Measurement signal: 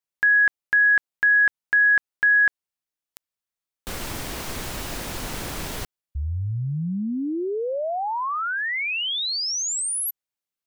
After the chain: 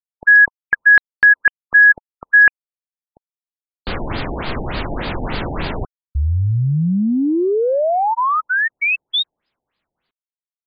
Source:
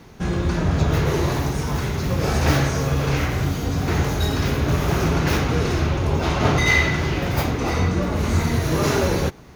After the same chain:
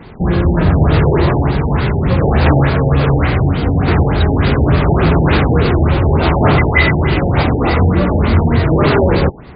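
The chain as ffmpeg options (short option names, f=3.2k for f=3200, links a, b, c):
-af "aeval=exprs='0.531*sin(PI/2*1.58*val(0)/0.531)':c=same,acrusher=bits=10:mix=0:aa=0.000001,afftfilt=real='re*lt(b*sr/1024,870*pow(5000/870,0.5+0.5*sin(2*PI*3.4*pts/sr)))':imag='im*lt(b*sr/1024,870*pow(5000/870,0.5+0.5*sin(2*PI*3.4*pts/sr)))':win_size=1024:overlap=0.75,volume=2dB"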